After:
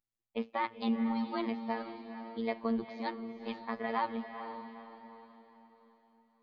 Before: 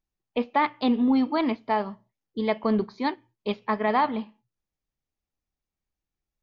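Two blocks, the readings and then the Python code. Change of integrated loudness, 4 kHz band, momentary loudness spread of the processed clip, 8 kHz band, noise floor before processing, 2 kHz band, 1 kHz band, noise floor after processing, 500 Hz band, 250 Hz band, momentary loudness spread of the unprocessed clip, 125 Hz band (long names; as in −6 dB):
−10.5 dB, −9.5 dB, 16 LU, can't be measured, below −85 dBFS, −9.0 dB, −10.0 dB, below −85 dBFS, −10.0 dB, −9.5 dB, 12 LU, −10.5 dB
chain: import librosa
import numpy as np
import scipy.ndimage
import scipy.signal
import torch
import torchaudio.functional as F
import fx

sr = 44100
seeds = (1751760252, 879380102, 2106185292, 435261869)

y = fx.robotise(x, sr, hz=114.0)
y = fx.echo_diffused(y, sr, ms=464, feedback_pct=42, wet_db=-9)
y = y * 10.0 ** (-7.5 / 20.0)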